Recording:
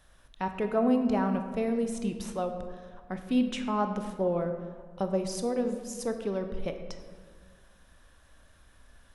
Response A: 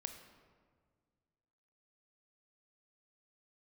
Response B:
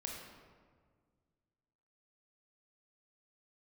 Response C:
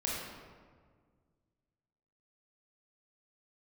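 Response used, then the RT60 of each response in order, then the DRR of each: A; 1.8 s, 1.7 s, 1.7 s; 6.5 dB, -1.0 dB, -5.0 dB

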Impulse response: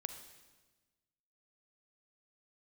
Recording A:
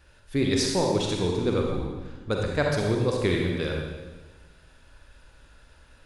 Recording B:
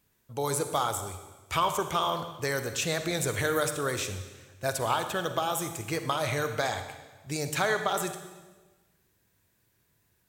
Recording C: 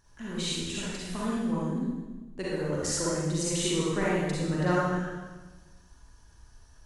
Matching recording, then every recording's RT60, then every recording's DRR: B; 1.3 s, 1.3 s, 1.3 s; -0.5 dB, 8.0 dB, -7.5 dB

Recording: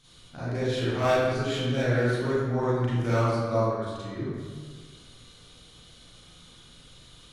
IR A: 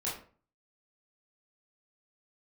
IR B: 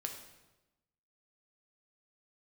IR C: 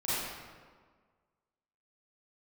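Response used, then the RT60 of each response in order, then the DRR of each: C; 0.40 s, 1.0 s, 1.6 s; -7.5 dB, 2.5 dB, -12.0 dB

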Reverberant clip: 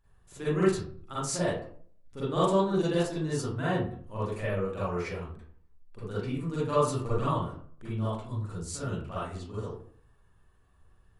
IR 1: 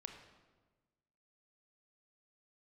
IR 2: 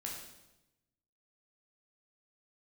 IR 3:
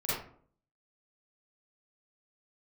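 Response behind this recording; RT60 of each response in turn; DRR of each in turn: 3; 1.3 s, 0.95 s, 0.55 s; 4.5 dB, -2.0 dB, -11.0 dB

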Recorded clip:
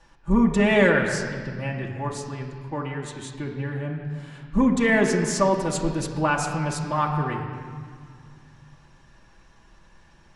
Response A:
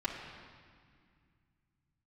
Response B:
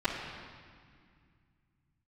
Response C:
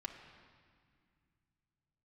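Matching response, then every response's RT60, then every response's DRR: A; 2.0 s, 2.0 s, 2.0 s; -8.0 dB, -18.0 dB, -1.5 dB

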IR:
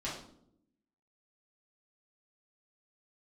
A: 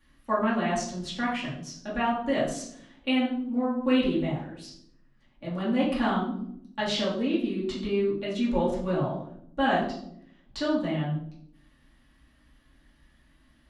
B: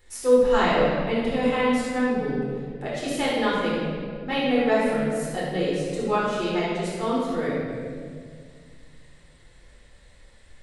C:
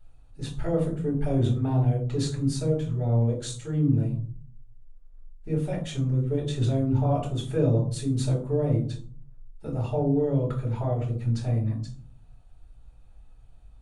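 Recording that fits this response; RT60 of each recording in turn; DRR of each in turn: A; 0.70 s, 1.9 s, 0.50 s; -9.0 dB, -7.5 dB, -4.5 dB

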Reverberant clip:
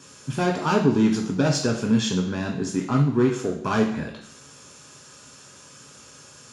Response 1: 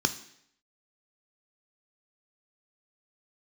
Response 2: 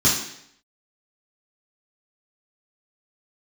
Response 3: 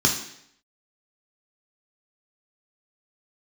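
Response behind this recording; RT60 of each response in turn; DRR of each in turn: 3; 0.70 s, 0.70 s, 0.70 s; 9.0 dB, -8.0 dB, 0.5 dB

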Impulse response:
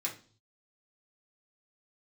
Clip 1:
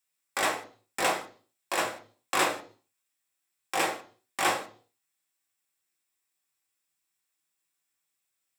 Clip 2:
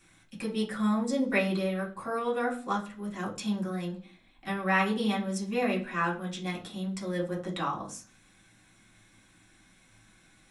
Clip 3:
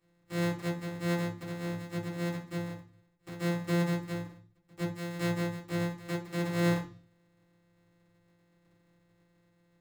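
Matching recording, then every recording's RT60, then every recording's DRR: 2; no single decay rate, no single decay rate, no single decay rate; 0.5 dB, -4.0 dB, -10.5 dB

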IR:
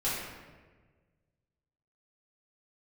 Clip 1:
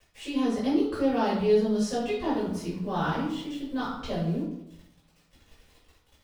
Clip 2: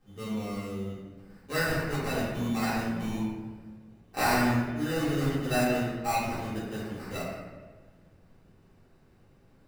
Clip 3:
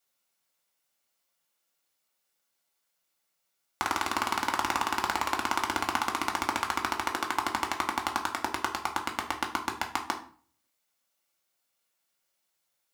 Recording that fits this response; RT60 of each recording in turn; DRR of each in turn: 2; 0.80 s, 1.4 s, 0.45 s; -9.5 dB, -11.0 dB, 1.5 dB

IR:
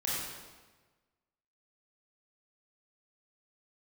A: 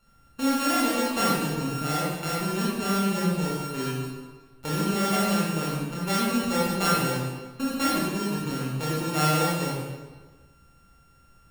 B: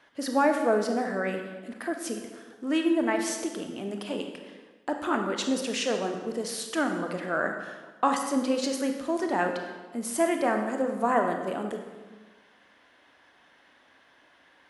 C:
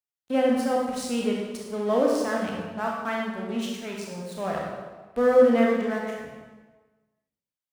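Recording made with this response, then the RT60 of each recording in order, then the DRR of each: A; 1.3 s, 1.3 s, 1.3 s; -7.0 dB, 4.0 dB, -2.0 dB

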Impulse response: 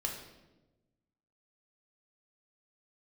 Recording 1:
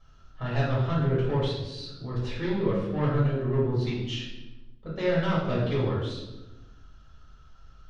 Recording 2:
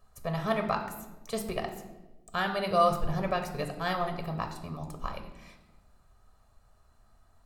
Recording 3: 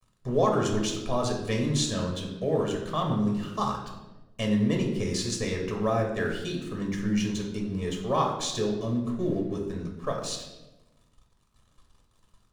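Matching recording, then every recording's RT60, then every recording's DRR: 3; 1.1 s, 1.1 s, 1.1 s; -8.0 dB, 5.0 dB, 0.0 dB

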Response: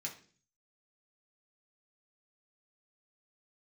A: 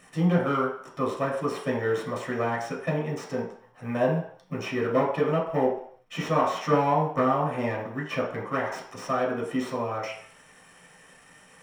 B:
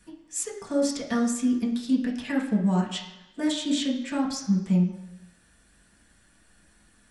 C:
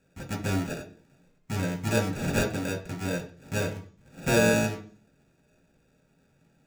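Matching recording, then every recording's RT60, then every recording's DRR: C; 0.60 s, 1.0 s, 0.45 s; -4.5 dB, -4.0 dB, -2.5 dB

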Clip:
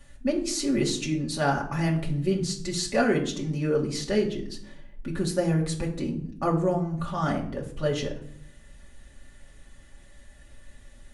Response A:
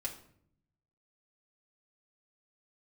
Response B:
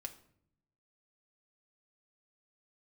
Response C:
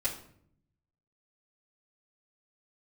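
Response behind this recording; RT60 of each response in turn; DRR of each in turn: A; 0.65 s, 0.65 s, 0.65 s; -3.0 dB, 3.0 dB, -9.0 dB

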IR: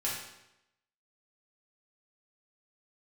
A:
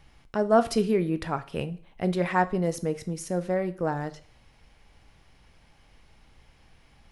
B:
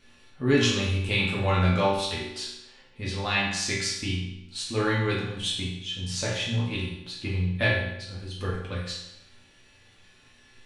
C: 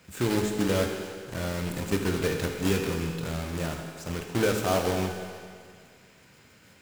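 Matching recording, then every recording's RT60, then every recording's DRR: B; 0.45 s, 0.85 s, 2.0 s; 10.5 dB, -7.0 dB, 2.5 dB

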